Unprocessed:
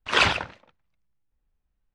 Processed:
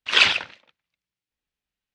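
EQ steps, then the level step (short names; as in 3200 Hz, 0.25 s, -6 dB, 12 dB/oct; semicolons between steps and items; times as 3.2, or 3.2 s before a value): weighting filter D; -5.0 dB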